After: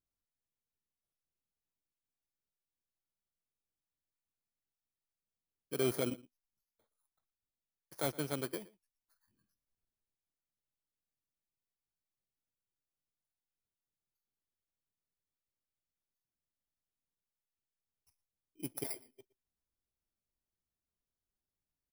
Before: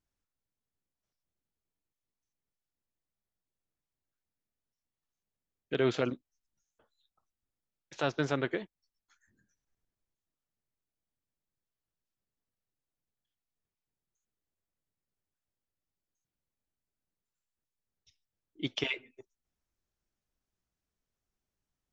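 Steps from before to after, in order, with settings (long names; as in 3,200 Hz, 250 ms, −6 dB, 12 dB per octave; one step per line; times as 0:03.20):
samples in bit-reversed order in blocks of 16 samples
0:05.77–0:08.11: leveller curve on the samples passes 1
slap from a distant wall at 20 metres, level −21 dB
level −7 dB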